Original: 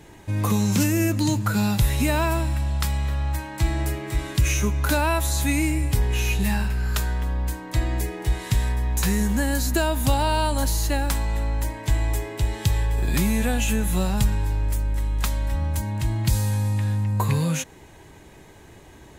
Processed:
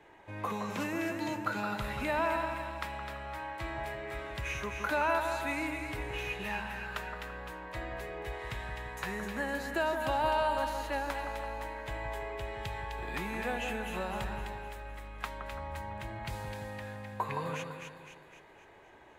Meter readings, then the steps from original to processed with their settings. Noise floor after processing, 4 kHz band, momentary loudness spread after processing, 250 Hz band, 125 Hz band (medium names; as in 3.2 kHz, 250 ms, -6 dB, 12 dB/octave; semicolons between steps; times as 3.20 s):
-56 dBFS, -12.0 dB, 11 LU, -15.0 dB, -21.5 dB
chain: three-band isolator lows -16 dB, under 410 Hz, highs -19 dB, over 2.9 kHz; two-band feedback delay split 1.6 kHz, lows 168 ms, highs 256 ms, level -5.5 dB; trim -5 dB